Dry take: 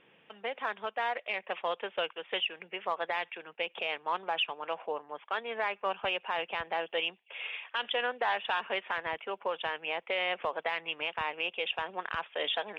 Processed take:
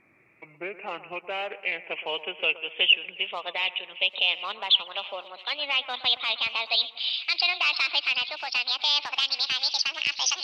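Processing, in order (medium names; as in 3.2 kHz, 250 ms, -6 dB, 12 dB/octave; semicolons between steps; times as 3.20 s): gliding tape speed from 69% -> 176%; resonant high shelf 2.1 kHz +7.5 dB, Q 3; two-band feedback delay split 2.3 kHz, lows 120 ms, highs 758 ms, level -15 dB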